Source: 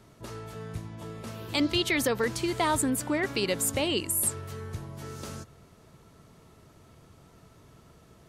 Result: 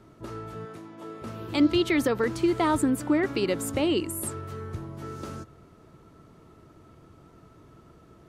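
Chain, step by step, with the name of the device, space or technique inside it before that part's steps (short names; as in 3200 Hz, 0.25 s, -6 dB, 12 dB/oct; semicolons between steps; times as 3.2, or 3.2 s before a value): inside a helmet (high shelf 3100 Hz -9 dB; small resonant body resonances 320/1300 Hz, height 7 dB, ringing for 30 ms); 0.65–1.22 HPF 290 Hz 12 dB/oct; gain +1 dB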